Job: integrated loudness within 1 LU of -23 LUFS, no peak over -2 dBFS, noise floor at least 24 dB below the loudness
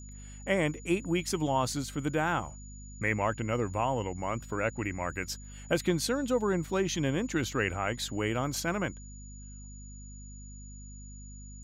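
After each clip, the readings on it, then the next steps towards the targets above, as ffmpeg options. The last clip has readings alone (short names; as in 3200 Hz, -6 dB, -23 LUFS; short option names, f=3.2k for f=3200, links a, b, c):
hum 50 Hz; harmonics up to 250 Hz; hum level -43 dBFS; steady tone 6900 Hz; tone level -51 dBFS; loudness -31.0 LUFS; peak -14.5 dBFS; loudness target -23.0 LUFS
-> -af "bandreject=f=50:t=h:w=4,bandreject=f=100:t=h:w=4,bandreject=f=150:t=h:w=4,bandreject=f=200:t=h:w=4,bandreject=f=250:t=h:w=4"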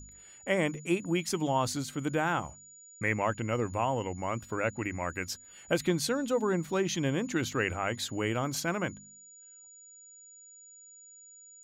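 hum none; steady tone 6900 Hz; tone level -51 dBFS
-> -af "bandreject=f=6.9k:w=30"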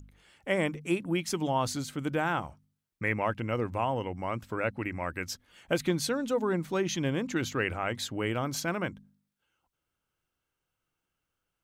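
steady tone none; loudness -31.5 LUFS; peak -14.5 dBFS; loudness target -23.0 LUFS
-> -af "volume=8.5dB"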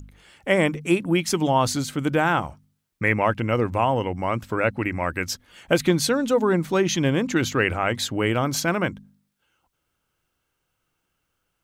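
loudness -23.0 LUFS; peak -6.0 dBFS; noise floor -77 dBFS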